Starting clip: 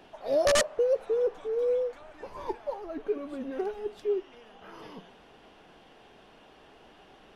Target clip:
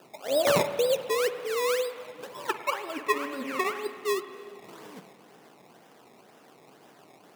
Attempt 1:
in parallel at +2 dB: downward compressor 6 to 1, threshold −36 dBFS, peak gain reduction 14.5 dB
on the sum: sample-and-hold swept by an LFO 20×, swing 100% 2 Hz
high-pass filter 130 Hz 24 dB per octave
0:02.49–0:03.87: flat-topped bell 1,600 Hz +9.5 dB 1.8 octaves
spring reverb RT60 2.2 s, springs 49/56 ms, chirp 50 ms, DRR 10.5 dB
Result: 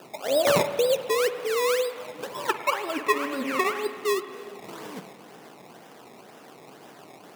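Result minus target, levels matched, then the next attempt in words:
downward compressor: peak gain reduction +14.5 dB
sample-and-hold swept by an LFO 20×, swing 100% 2 Hz
high-pass filter 130 Hz 24 dB per octave
0:02.49–0:03.87: flat-topped bell 1,600 Hz +9.5 dB 1.8 octaves
spring reverb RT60 2.2 s, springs 49/56 ms, chirp 50 ms, DRR 10.5 dB

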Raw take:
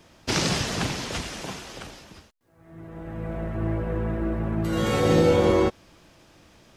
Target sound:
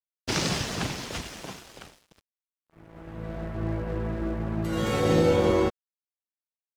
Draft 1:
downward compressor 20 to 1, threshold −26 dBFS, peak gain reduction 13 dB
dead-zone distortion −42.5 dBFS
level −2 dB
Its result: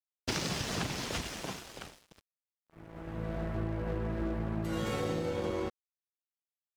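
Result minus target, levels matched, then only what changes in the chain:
downward compressor: peak gain reduction +13 dB
remove: downward compressor 20 to 1, threshold −26 dBFS, peak gain reduction 13 dB

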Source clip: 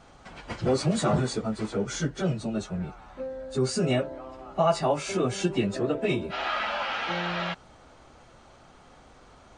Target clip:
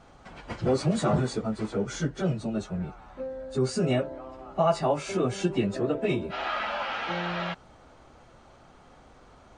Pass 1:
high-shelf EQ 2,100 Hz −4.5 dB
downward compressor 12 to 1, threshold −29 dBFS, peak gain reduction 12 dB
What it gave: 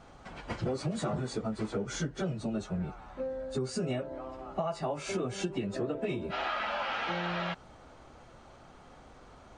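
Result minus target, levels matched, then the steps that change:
downward compressor: peak gain reduction +12 dB
remove: downward compressor 12 to 1, threshold −29 dBFS, peak gain reduction 12 dB

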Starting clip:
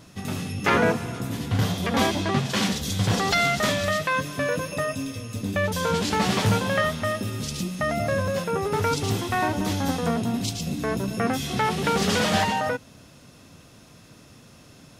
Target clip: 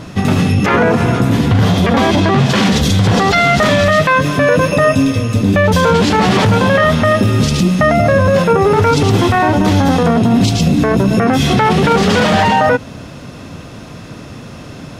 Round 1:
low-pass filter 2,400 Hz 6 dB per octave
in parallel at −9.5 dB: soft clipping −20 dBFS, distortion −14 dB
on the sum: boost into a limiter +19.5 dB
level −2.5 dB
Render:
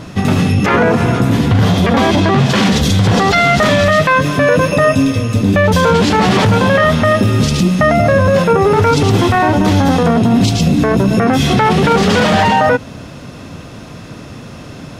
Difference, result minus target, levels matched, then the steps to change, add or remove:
soft clipping: distortion +11 dB
change: soft clipping −12 dBFS, distortion −25 dB

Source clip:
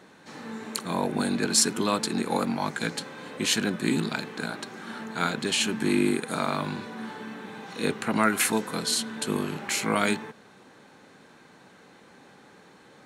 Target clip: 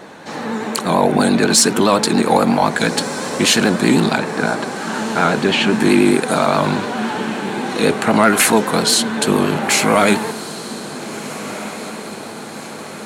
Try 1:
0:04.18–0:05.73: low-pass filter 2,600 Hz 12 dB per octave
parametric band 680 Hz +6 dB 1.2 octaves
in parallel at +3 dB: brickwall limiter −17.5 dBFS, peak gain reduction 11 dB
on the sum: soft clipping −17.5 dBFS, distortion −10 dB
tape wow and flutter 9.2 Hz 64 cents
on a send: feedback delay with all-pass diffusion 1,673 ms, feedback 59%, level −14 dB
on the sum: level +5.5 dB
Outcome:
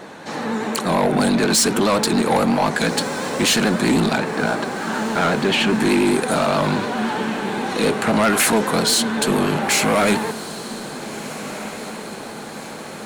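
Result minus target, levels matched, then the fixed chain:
soft clipping: distortion +14 dB
0:04.18–0:05.73: low-pass filter 2,600 Hz 12 dB per octave
parametric band 680 Hz +6 dB 1.2 octaves
in parallel at +3 dB: brickwall limiter −17.5 dBFS, peak gain reduction 11 dB
on the sum: soft clipping −6 dBFS, distortion −24 dB
tape wow and flutter 9.2 Hz 64 cents
on a send: feedback delay with all-pass diffusion 1,673 ms, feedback 59%, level −14 dB
on the sum: level +5.5 dB

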